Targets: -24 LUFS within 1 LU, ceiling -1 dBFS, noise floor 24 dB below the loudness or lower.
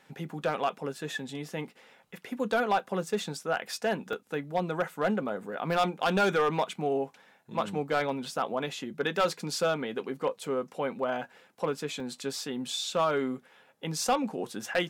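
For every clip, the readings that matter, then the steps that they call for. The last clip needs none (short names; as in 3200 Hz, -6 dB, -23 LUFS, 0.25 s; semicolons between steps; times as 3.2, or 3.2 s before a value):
clipped 0.5%; flat tops at -19.0 dBFS; dropouts 2; longest dropout 2.2 ms; loudness -31.0 LUFS; peak -19.0 dBFS; loudness target -24.0 LUFS
-> clip repair -19 dBFS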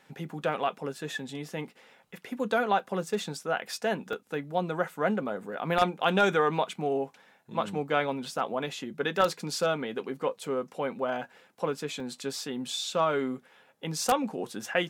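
clipped 0.0%; dropouts 2; longest dropout 2.2 ms
-> interpolate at 4.13/12, 2.2 ms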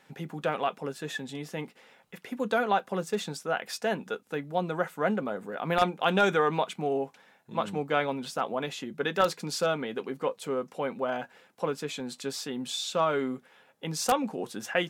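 dropouts 0; loudness -30.5 LUFS; peak -10.0 dBFS; loudness target -24.0 LUFS
-> gain +6.5 dB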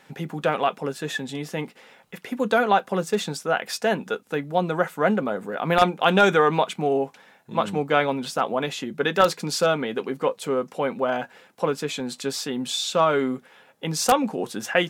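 loudness -24.0 LUFS; peak -3.5 dBFS; noise floor -56 dBFS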